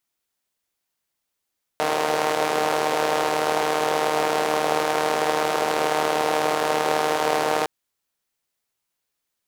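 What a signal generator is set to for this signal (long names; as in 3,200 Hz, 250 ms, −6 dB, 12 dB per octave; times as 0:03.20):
pulse-train model of a four-cylinder engine, steady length 5.86 s, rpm 4,600, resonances 490/700 Hz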